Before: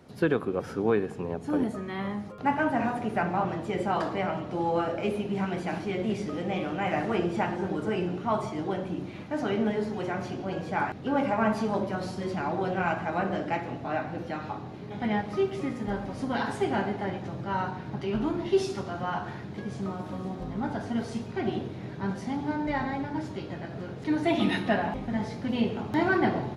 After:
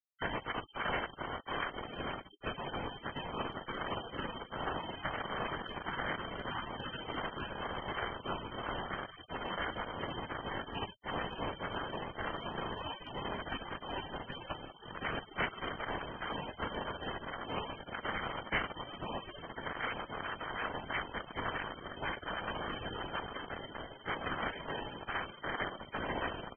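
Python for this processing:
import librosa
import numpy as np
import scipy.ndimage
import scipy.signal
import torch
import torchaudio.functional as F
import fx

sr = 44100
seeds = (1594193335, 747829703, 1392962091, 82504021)

y = fx.notch(x, sr, hz=650.0, q=12.0)
y = fx.doubler(y, sr, ms=31.0, db=-10)
y = fx.echo_feedback(y, sr, ms=151, feedback_pct=30, wet_db=-23.5)
y = fx.rider(y, sr, range_db=3, speed_s=0.5)
y = fx.lpc_vocoder(y, sr, seeds[0], excitation='whisper', order=10)
y = np.clip(10.0 ** (19.5 / 20.0) * y, -1.0, 1.0) / 10.0 ** (19.5 / 20.0)
y = fx.low_shelf(y, sr, hz=120.0, db=-2.5)
y = np.sign(y) * np.maximum(np.abs(y) - 10.0 ** (-34.5 / 20.0), 0.0)
y = fx.freq_invert(y, sr, carrier_hz=2900)
y = fx.dynamic_eq(y, sr, hz=950.0, q=4.6, threshold_db=-50.0, ratio=4.0, max_db=-4)
y = fx.spec_gate(y, sr, threshold_db=-25, keep='weak')
y = fx.env_flatten(y, sr, amount_pct=50)
y = y * 10.0 ** (9.5 / 20.0)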